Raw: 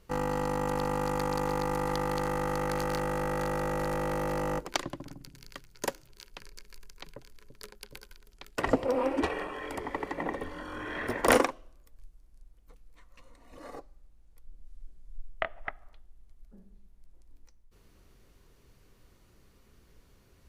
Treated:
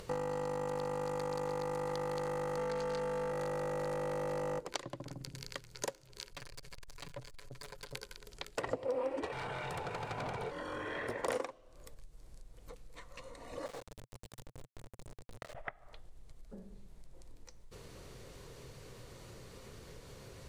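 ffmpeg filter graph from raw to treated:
ffmpeg -i in.wav -filter_complex "[0:a]asettb=1/sr,asplit=3[link_01][link_02][link_03];[link_01]atrim=end=2.574[link_04];[link_02]atrim=start=2.57:end=3.32,asetpts=PTS-STARTPTS,afade=type=in:duration=0.004:curve=qsin,afade=type=out:start_time=0.746:duration=0.004:curve=qsin,acrossover=split=7400[link_05][link_06];[link_06]acompressor=threshold=-54dB:ratio=4:attack=1:release=60[link_07];[link_05][link_07]amix=inputs=2:normalize=0,aecho=1:1:4.4:0.71,atrim=end_sample=33075[link_08];[link_03]atrim=start=3.316[link_09];[link_04][link_08]acrossfade=duration=0.004:curve1=hsin:curve2=qsin[link_10];[link_10][link_09]acrossfade=duration=0.004:curve1=qsin:curve2=hsin,asettb=1/sr,asplit=3[link_11][link_12][link_13];[link_11]atrim=end=6.314[link_14];[link_12]atrim=start=6.31:end=7.95,asetpts=PTS-STARTPTS,afade=type=in:duration=0.004:curve=qsin,afade=type=out:start_time=1.636:duration=0.004:curve=qsin,equalizer=frequency=420:width_type=o:width=0.37:gain=-10.5,aecho=1:1:7:0.82,atrim=end_sample=72324,aeval=exprs='(tanh(251*val(0)+0.25)-tanh(0.25))/251':channel_layout=same[link_15];[link_13]atrim=start=7.946[link_16];[link_14][link_15]acrossfade=duration=0.004:curve1=hsin:curve2=qsin[link_17];[link_17][link_16]acrossfade=duration=0.004:curve1=qsin:curve2=hsin,asettb=1/sr,asplit=3[link_18][link_19][link_20];[link_18]atrim=end=9.324[link_21];[link_19]atrim=start=9.32:end=10.51,asetpts=PTS-STARTPTS,afade=type=in:duration=0.004:curve=qsin,afade=type=out:start_time=1.186:duration=0.004:curve=qsin,volume=35dB,asoftclip=hard,volume=-35dB,acontrast=65,aeval=exprs='val(0)*sin(2*PI*440*n/s)':channel_layout=same[link_22];[link_20]atrim=start=10.506[link_23];[link_21][link_22]acrossfade=duration=0.004:curve1=hsin:curve2=qsin[link_24];[link_24][link_23]acrossfade=duration=0.004:curve1=qsin:curve2=hsin,asettb=1/sr,asplit=3[link_25][link_26][link_27];[link_25]atrim=end=13.664[link_28];[link_26]atrim=start=13.66:end=15.55,asetpts=PTS-STARTPTS,afade=type=in:duration=0.004:curve=qsin,afade=type=out:start_time=1.886:duration=0.004:curve=qsin,acompressor=threshold=-44dB:ratio=6:attack=3.2:release=140:knee=1:detection=peak,acrusher=bits=6:dc=4:mix=0:aa=0.000001[link_29];[link_27]atrim=start=15.546[link_30];[link_28][link_29]acrossfade=duration=0.004:curve1=hsin:curve2=qsin[link_31];[link_31][link_30]acrossfade=duration=0.004:curve1=qsin:curve2=hsin,acompressor=threshold=-46dB:ratio=4,equalizer=frequency=125:width_type=o:width=1:gain=11,equalizer=frequency=500:width_type=o:width=1:gain=12,equalizer=frequency=1000:width_type=o:width=1:gain=5,equalizer=frequency=2000:width_type=o:width=1:gain=5,equalizer=frequency=4000:width_type=o:width=1:gain=7,equalizer=frequency=8000:width_type=o:width=1:gain=9,acompressor=mode=upward:threshold=-42dB:ratio=2.5,volume=-2dB" out.wav

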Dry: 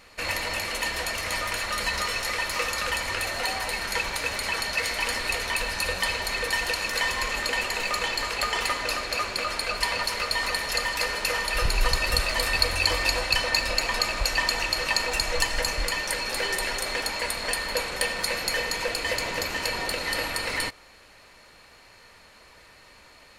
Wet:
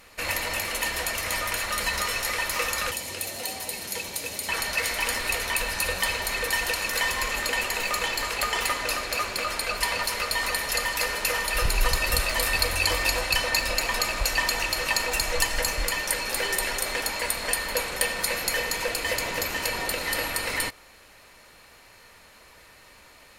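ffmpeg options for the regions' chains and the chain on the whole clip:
ffmpeg -i in.wav -filter_complex "[0:a]asettb=1/sr,asplit=3[link_01][link_02][link_03];[link_01]atrim=end=2.914[link_04];[link_02]atrim=start=2.91:end=4.49,asetpts=PTS-STARTPTS,afade=type=in:duration=0.004:curve=qsin,afade=type=out:start_time=1.576:duration=0.004:curve=qsin,highpass=110,equalizer=frequency=1400:width=0.74:gain=-13.5[link_05];[link_03]atrim=start=4.486[link_06];[link_04][link_05]acrossfade=duration=0.004:curve1=hsin:curve2=qsin[link_07];[link_07][link_06]acrossfade=duration=0.004:curve1=qsin:curve2=hsin,equalizer=frequency=15000:width_type=o:width=0.83:gain=10.5,bandreject=frequency=4400:width=20" out.wav

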